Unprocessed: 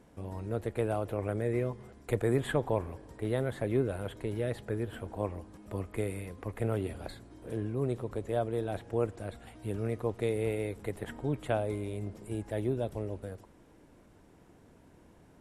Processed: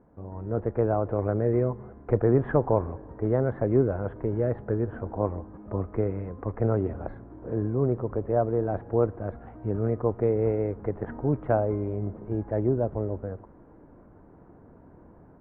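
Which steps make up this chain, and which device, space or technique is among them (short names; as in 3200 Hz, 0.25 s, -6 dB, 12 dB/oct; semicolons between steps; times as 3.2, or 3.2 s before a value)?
action camera in a waterproof case (LPF 1400 Hz 24 dB/oct; AGC gain up to 7 dB; AAC 96 kbps 48000 Hz)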